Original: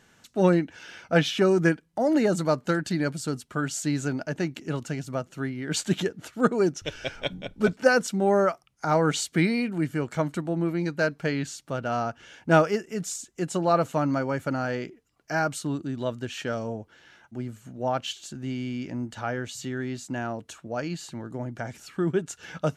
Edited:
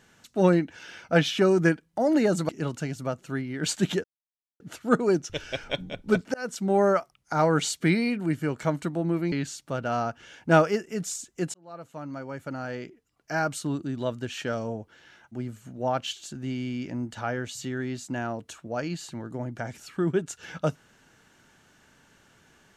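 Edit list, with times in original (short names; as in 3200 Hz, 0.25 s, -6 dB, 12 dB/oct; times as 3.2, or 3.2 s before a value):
2.49–4.57 cut
6.12 insert silence 0.56 s
7.86–8.21 fade in
10.84–11.32 cut
13.54–15.68 fade in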